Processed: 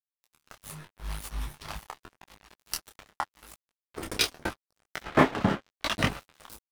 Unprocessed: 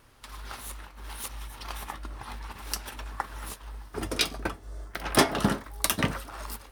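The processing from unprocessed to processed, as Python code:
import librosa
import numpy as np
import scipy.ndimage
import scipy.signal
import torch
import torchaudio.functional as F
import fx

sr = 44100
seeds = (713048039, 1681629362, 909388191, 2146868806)

y = fx.low_shelf(x, sr, hz=100.0, db=11.5, at=(0.61, 1.75), fade=0.02)
y = fx.lowpass(y, sr, hz=fx.line((5.04, 2000.0), (5.95, 4900.0)), slope=24, at=(5.04, 5.95), fade=0.02)
y = np.sign(y) * np.maximum(np.abs(y) - 10.0 ** (-33.0 / 20.0), 0.0)
y = fx.detune_double(y, sr, cents=29)
y = y * librosa.db_to_amplitude(7.0)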